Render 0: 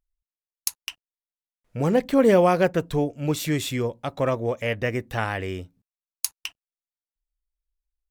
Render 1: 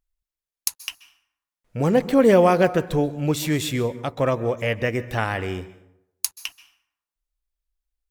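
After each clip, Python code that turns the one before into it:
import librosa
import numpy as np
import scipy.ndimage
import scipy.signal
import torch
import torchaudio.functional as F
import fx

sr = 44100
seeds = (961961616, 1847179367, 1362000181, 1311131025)

y = fx.rev_plate(x, sr, seeds[0], rt60_s=0.79, hf_ratio=0.6, predelay_ms=120, drr_db=15.5)
y = y * 10.0 ** (2.0 / 20.0)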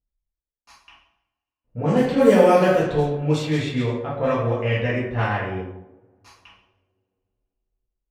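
y = fx.rev_double_slope(x, sr, seeds[1], early_s=0.75, late_s=3.0, knee_db=-26, drr_db=-8.0)
y = fx.env_lowpass(y, sr, base_hz=570.0, full_db=-5.5)
y = y * 10.0 ** (-7.5 / 20.0)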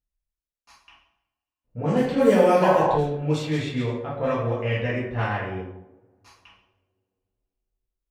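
y = fx.spec_paint(x, sr, seeds[2], shape='noise', start_s=2.62, length_s=0.36, low_hz=480.0, high_hz=1100.0, level_db=-19.0)
y = y * 10.0 ** (-3.0 / 20.0)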